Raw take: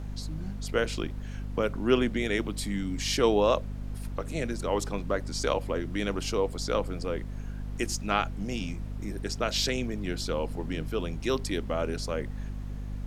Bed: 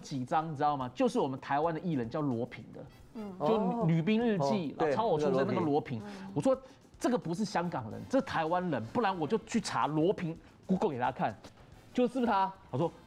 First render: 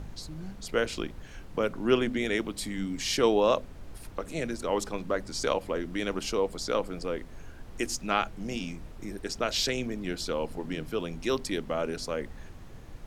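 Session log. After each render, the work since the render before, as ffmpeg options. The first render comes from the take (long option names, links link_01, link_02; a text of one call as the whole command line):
ffmpeg -i in.wav -af "bandreject=frequency=50:width_type=h:width=4,bandreject=frequency=100:width_type=h:width=4,bandreject=frequency=150:width_type=h:width=4,bandreject=frequency=200:width_type=h:width=4,bandreject=frequency=250:width_type=h:width=4" out.wav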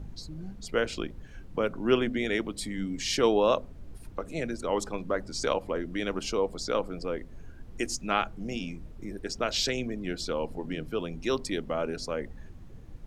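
ffmpeg -i in.wav -af "afftdn=noise_reduction=9:noise_floor=-46" out.wav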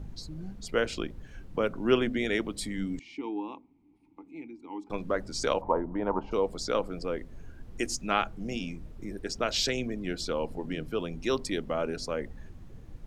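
ffmpeg -i in.wav -filter_complex "[0:a]asettb=1/sr,asplit=3[link_01][link_02][link_03];[link_01]atrim=end=2.994[link_04];[link_02]atrim=start=2.99:end=4.9,asetpts=PTS-STARTPTS,afade=type=in:duration=0.004:curve=qsin,afade=type=out:start_time=1.906:duration=0.004:curve=qsin,asplit=3[link_05][link_06][link_07];[link_05]bandpass=frequency=300:width_type=q:width=8,volume=0dB[link_08];[link_06]bandpass=frequency=870:width_type=q:width=8,volume=-6dB[link_09];[link_07]bandpass=frequency=2240:width_type=q:width=8,volume=-9dB[link_10];[link_08][link_09][link_10]amix=inputs=3:normalize=0[link_11];[link_03]atrim=start=4.896[link_12];[link_04][link_11]acrossfade=duration=0.004:curve1=hsin:curve2=qsin[link_13];[link_13][link_12]acrossfade=duration=0.004:curve1=qsin:curve2=hsin,asplit=3[link_14][link_15][link_16];[link_14]afade=type=out:start_time=5.6:duration=0.02[link_17];[link_15]lowpass=frequency=920:width_type=q:width=11,afade=type=in:start_time=5.6:duration=0.02,afade=type=out:start_time=6.31:duration=0.02[link_18];[link_16]afade=type=in:start_time=6.31:duration=0.02[link_19];[link_17][link_18][link_19]amix=inputs=3:normalize=0" out.wav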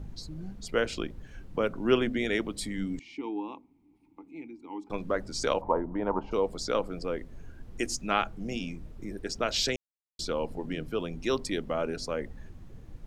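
ffmpeg -i in.wav -filter_complex "[0:a]asplit=3[link_01][link_02][link_03];[link_01]atrim=end=9.76,asetpts=PTS-STARTPTS,afade=type=out:start_time=9.756:duration=0.004:curve=hsin[link_04];[link_02]atrim=start=9.76:end=10.19,asetpts=PTS-STARTPTS,volume=0[link_05];[link_03]atrim=start=10.19,asetpts=PTS-STARTPTS,afade=type=in:duration=0.004:curve=hsin[link_06];[link_04][link_05][link_06]concat=n=3:v=0:a=1" out.wav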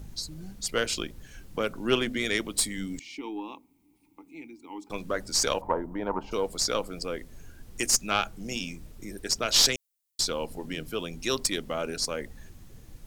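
ffmpeg -i in.wav -af "crystalizer=i=5:c=0,aeval=exprs='(tanh(2.51*val(0)+0.5)-tanh(0.5))/2.51':channel_layout=same" out.wav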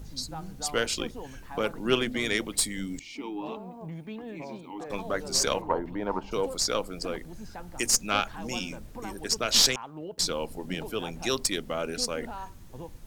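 ffmpeg -i in.wav -i bed.wav -filter_complex "[1:a]volume=-11dB[link_01];[0:a][link_01]amix=inputs=2:normalize=0" out.wav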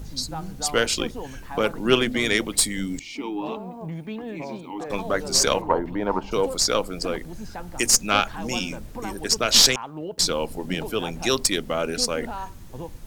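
ffmpeg -i in.wav -af "volume=6dB,alimiter=limit=-2dB:level=0:latency=1" out.wav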